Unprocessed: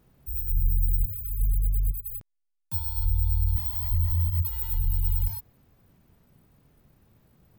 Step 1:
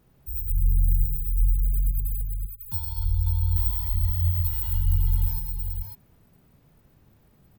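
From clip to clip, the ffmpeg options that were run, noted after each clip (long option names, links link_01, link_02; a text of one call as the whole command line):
ffmpeg -i in.wav -af "aecho=1:1:70|117|198|335|547:0.168|0.398|0.237|0.237|0.531" out.wav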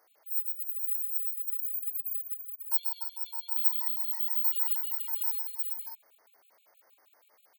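ffmpeg -i in.wav -af "highpass=frequency=570:width=0.5412,highpass=frequency=570:width=1.3066,afftfilt=real='re*gt(sin(2*PI*6.3*pts/sr)*(1-2*mod(floor(b*sr/1024/2200),2)),0)':imag='im*gt(sin(2*PI*6.3*pts/sr)*(1-2*mod(floor(b*sr/1024/2200),2)),0)':win_size=1024:overlap=0.75,volume=5dB" out.wav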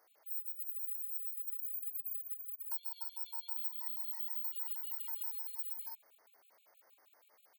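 ffmpeg -i in.wav -af "acompressor=threshold=-35dB:ratio=4,volume=-3dB" out.wav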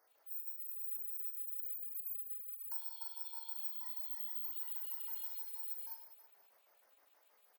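ffmpeg -i in.wav -af "aecho=1:1:40|100|190|325|527.5:0.631|0.398|0.251|0.158|0.1,volume=-4.5dB" out.wav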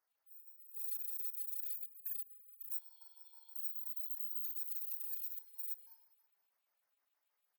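ffmpeg -i in.wav -af "afwtdn=0.00447,equalizer=frequency=500:width=1:gain=-9,asoftclip=type=tanh:threshold=-35dB,volume=3.5dB" out.wav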